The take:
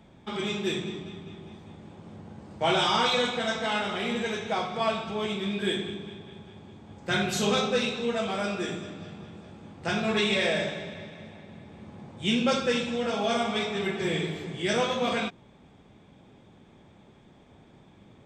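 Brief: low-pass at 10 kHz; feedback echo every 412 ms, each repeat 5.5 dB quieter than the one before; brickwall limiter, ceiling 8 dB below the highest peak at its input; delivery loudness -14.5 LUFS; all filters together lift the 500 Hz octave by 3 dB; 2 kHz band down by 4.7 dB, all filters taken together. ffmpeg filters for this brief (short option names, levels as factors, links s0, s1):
-af "lowpass=10000,equalizer=f=500:t=o:g=4,equalizer=f=2000:t=o:g=-6.5,alimiter=limit=0.1:level=0:latency=1,aecho=1:1:412|824|1236|1648|2060|2472|2884:0.531|0.281|0.149|0.079|0.0419|0.0222|0.0118,volume=5.62"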